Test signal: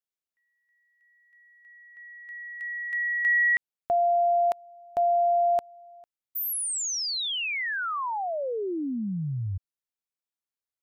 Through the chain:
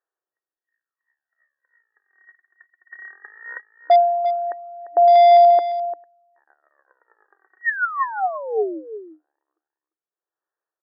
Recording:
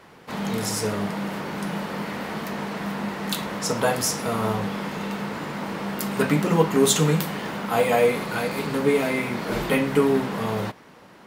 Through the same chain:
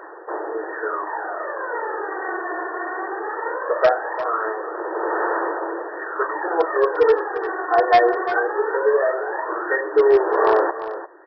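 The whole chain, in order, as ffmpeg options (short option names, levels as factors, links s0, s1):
-af "aphaser=in_gain=1:out_gain=1:delay=2.8:decay=0.67:speed=0.19:type=sinusoidal,afftfilt=real='re*between(b*sr/4096,310,1900)':imag='im*between(b*sr/4096,310,1900)':win_size=4096:overlap=0.75,aresample=11025,asoftclip=type=hard:threshold=0.282,aresample=44100,aemphasis=mode=production:type=75fm,aecho=1:1:347:0.237,volume=1.5"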